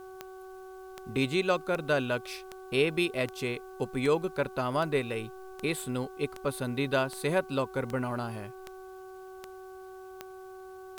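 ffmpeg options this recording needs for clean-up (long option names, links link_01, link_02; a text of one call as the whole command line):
ffmpeg -i in.wav -af "adeclick=threshold=4,bandreject=frequency=376.5:width_type=h:width=4,bandreject=frequency=753:width_type=h:width=4,bandreject=frequency=1129.5:width_type=h:width=4,bandreject=frequency=1506:width_type=h:width=4,agate=range=-21dB:threshold=-38dB" out.wav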